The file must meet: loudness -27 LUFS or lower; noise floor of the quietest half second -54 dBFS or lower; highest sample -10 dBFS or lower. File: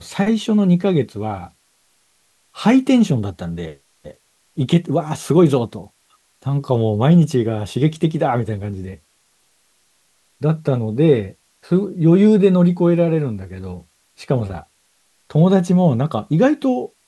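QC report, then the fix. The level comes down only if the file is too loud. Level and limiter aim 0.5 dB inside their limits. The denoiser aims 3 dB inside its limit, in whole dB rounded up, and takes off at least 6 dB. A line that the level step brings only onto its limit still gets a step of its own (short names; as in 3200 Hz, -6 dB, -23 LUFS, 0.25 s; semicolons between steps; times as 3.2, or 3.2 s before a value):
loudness -17.5 LUFS: fail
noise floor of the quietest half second -61 dBFS: OK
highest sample -2.0 dBFS: fail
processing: gain -10 dB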